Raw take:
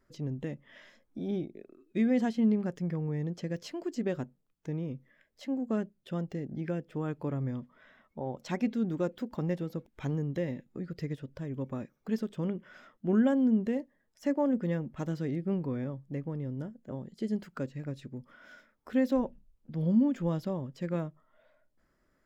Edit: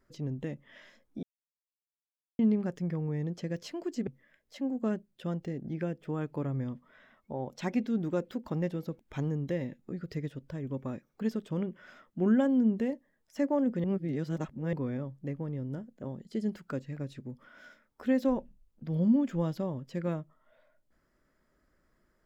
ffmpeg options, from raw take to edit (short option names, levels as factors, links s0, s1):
-filter_complex "[0:a]asplit=6[s0][s1][s2][s3][s4][s5];[s0]atrim=end=1.23,asetpts=PTS-STARTPTS,afade=t=out:st=1.226:d=0.004:c=hsin[s6];[s1]atrim=start=1.23:end=2.39,asetpts=PTS-STARTPTS,volume=0[s7];[s2]atrim=start=2.39:end=4.072,asetpts=PTS-STARTPTS,afade=t=in:d=0.004:c=hsin[s8];[s3]atrim=start=4.938:end=14.712[s9];[s4]atrim=start=14.708:end=15.602,asetpts=PTS-STARTPTS,areverse[s10];[s5]atrim=start=15.598[s11];[s6][s7][s8]concat=n=3:v=0:a=1[s12];[s12][s9]acrossfade=d=0.004:c1=hsin:c2=hsin[s13];[s13][s10]acrossfade=d=0.004:c1=hsin:c2=hsin[s14];[s14][s11]acrossfade=d=0.004:c1=hsin:c2=hsin"